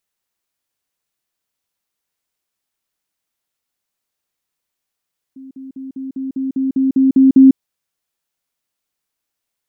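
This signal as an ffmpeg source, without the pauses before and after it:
ffmpeg -f lavfi -i "aevalsrc='pow(10,(-32.5+3*floor(t/0.2))/20)*sin(2*PI*266*t)*clip(min(mod(t,0.2),0.15-mod(t,0.2))/0.005,0,1)':duration=2.2:sample_rate=44100" out.wav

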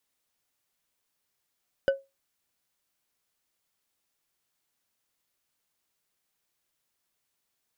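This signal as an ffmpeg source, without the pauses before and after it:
ffmpeg -f lavfi -i "aevalsrc='0.158*pow(10,-3*t/0.22)*sin(2*PI*546*t)+0.0562*pow(10,-3*t/0.108)*sin(2*PI*1505.3*t)+0.02*pow(10,-3*t/0.068)*sin(2*PI*2950.6*t)+0.00708*pow(10,-3*t/0.048)*sin(2*PI*4877.4*t)+0.00251*pow(10,-3*t/0.036)*sin(2*PI*7283.6*t)':duration=0.89:sample_rate=44100" out.wav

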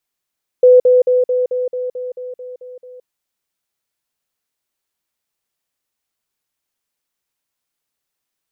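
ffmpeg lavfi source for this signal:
ffmpeg -f lavfi -i "aevalsrc='pow(10,(-4-3*floor(t/0.22))/20)*sin(2*PI*501*t)*clip(min(mod(t,0.22),0.17-mod(t,0.22))/0.005,0,1)':duration=2.42:sample_rate=44100" out.wav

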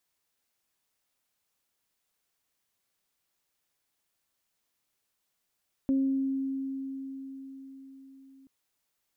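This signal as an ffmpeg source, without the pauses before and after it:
ffmpeg -f lavfi -i "aevalsrc='0.0794*pow(10,-3*t/5)*sin(2*PI*269*t)+0.0119*pow(10,-3*t/0.77)*sin(2*PI*538*t)':duration=2.58:sample_rate=44100" out.wav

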